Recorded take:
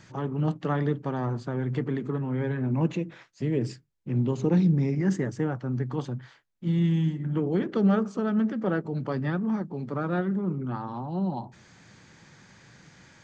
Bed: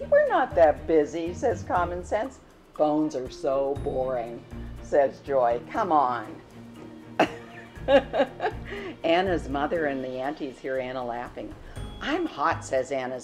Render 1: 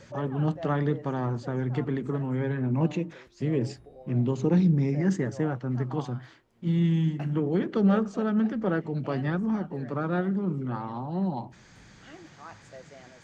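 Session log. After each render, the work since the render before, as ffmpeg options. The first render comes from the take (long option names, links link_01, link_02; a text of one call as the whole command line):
ffmpeg -i in.wav -i bed.wav -filter_complex "[1:a]volume=-21.5dB[link_01];[0:a][link_01]amix=inputs=2:normalize=0" out.wav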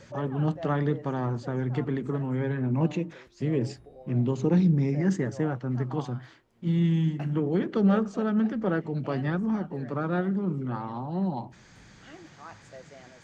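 ffmpeg -i in.wav -af anull out.wav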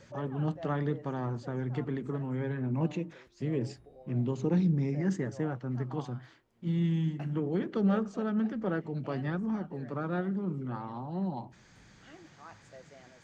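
ffmpeg -i in.wav -af "volume=-5dB" out.wav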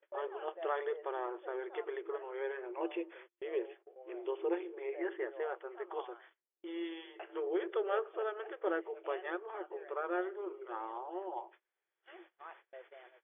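ffmpeg -i in.wav -af "afftfilt=real='re*between(b*sr/4096,330,3500)':imag='im*between(b*sr/4096,330,3500)':win_size=4096:overlap=0.75,agate=range=-29dB:threshold=-56dB:ratio=16:detection=peak" out.wav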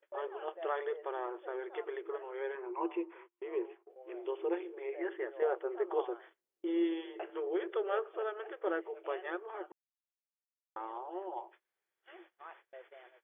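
ffmpeg -i in.wav -filter_complex "[0:a]asettb=1/sr,asplit=3[link_01][link_02][link_03];[link_01]atrim=end=2.554[link_04];[link_02]atrim=start=2.55:end=3.9,asetpts=PTS-STARTPTS,afade=type=in:duration=0.004:curve=qsin,afade=type=out:start_time=1.346:duration=0.004:curve=qsin,highpass=300,equalizer=frequency=350:width_type=q:width=4:gain=6,equalizer=frequency=570:width_type=q:width=4:gain=-9,equalizer=frequency=1000:width_type=q:width=4:gain=9,equalizer=frequency=1700:width_type=q:width=4:gain=-6,lowpass=frequency=2600:width=0.5412,lowpass=frequency=2600:width=1.3066[link_05];[link_03]atrim=start=3.896[link_06];[link_04][link_05]acrossfade=duration=0.004:curve1=hsin:curve2=qsin[link_07];[link_07][link_06]acrossfade=duration=0.004:curve1=qsin:curve2=hsin,asettb=1/sr,asplit=3[link_08][link_09][link_10];[link_08]atrim=end=5.424[link_11];[link_09]atrim=start=5.42:end=7.3,asetpts=PTS-STARTPTS,afade=type=in:duration=0.004:curve=qsin,afade=type=out:start_time=1.876:duration=0.004:curve=qsin,equalizer=frequency=370:width_type=o:width=2:gain=9.5[link_12];[link_10]atrim=start=7.296[link_13];[link_11][link_12]acrossfade=duration=0.004:curve1=hsin:curve2=qsin[link_14];[link_14][link_13]acrossfade=duration=0.004:curve1=qsin:curve2=hsin,asplit=3[link_15][link_16][link_17];[link_15]atrim=end=9.72,asetpts=PTS-STARTPTS,afade=type=out:start_time=9.716:duration=0.004:curve=hsin[link_18];[link_16]atrim=start=9.72:end=10.76,asetpts=PTS-STARTPTS,volume=0[link_19];[link_17]atrim=start=10.76,asetpts=PTS-STARTPTS,afade=type=in:duration=0.004:curve=hsin[link_20];[link_18][link_19][link_20]concat=n=3:v=0:a=1" out.wav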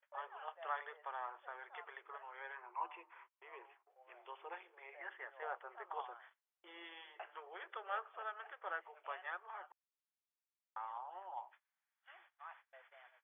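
ffmpeg -i in.wav -af "highpass=frequency=830:width=0.5412,highpass=frequency=830:width=1.3066,highshelf=frequency=3100:gain=-8.5" out.wav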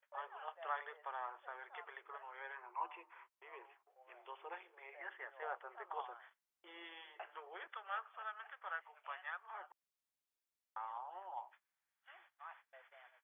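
ffmpeg -i in.wav -filter_complex "[0:a]asettb=1/sr,asplit=3[link_01][link_02][link_03];[link_01]atrim=end=7.674[link_04];[link_02]atrim=start=7.67:end=9.51,asetpts=PTS-STARTPTS,afade=type=in:duration=0.004:curve=qsin,afade=type=out:start_time=1.836:duration=0.004:curve=qsin,highpass=870[link_05];[link_03]atrim=start=9.506[link_06];[link_04][link_05]acrossfade=duration=0.004:curve1=hsin:curve2=qsin[link_07];[link_07][link_06]acrossfade=duration=0.004:curve1=qsin:curve2=hsin" out.wav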